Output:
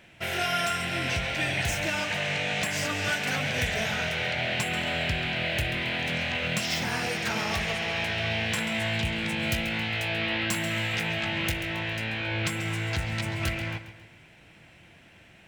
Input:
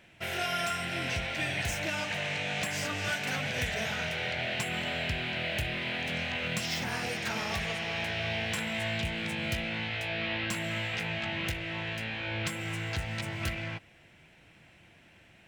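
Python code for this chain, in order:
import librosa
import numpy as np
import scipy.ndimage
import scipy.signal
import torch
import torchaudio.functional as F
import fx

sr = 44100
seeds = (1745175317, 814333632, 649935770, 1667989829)

y = fx.high_shelf(x, sr, hz=9000.0, db=7.5, at=(9.4, 11.67))
y = fx.echo_feedback(y, sr, ms=136, feedback_pct=46, wet_db=-13.0)
y = F.gain(torch.from_numpy(y), 4.0).numpy()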